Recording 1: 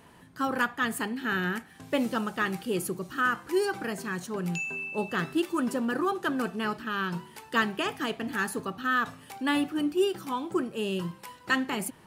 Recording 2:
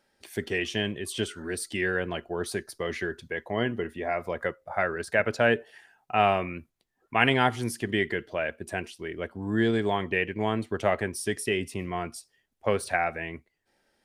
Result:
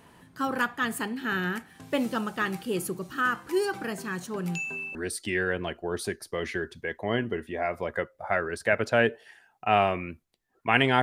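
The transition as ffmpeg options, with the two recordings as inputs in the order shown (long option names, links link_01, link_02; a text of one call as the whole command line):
ffmpeg -i cue0.wav -i cue1.wav -filter_complex "[0:a]apad=whole_dur=11.02,atrim=end=11.02,atrim=end=4.952[link_01];[1:a]atrim=start=1.418:end=7.49[link_02];[link_01][link_02]acrossfade=duration=0.004:curve1=hsin:curve2=hsin" out.wav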